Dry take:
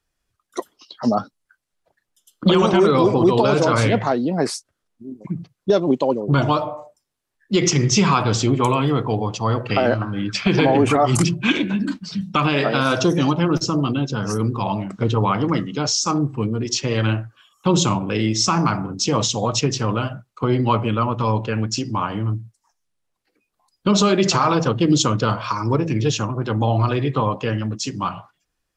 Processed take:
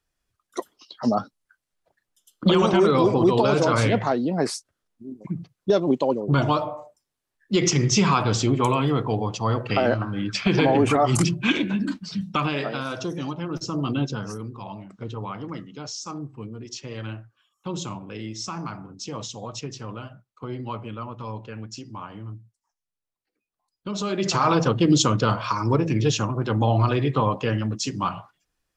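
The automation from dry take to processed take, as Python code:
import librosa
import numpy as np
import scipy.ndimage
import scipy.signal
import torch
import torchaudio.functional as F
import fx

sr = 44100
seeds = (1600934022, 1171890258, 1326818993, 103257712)

y = fx.gain(x, sr, db=fx.line((12.23, -3.0), (12.9, -12.0), (13.48, -12.0), (14.03, -2.0), (14.44, -14.0), (23.92, -14.0), (24.49, -1.5)))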